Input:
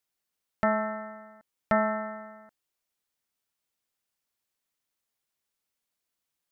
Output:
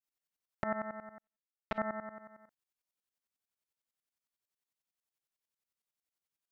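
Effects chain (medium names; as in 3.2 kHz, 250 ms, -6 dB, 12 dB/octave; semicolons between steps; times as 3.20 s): tremolo saw up 11 Hz, depth 90%; 1.18–1.78 s: power-law waveshaper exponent 2; trim -5 dB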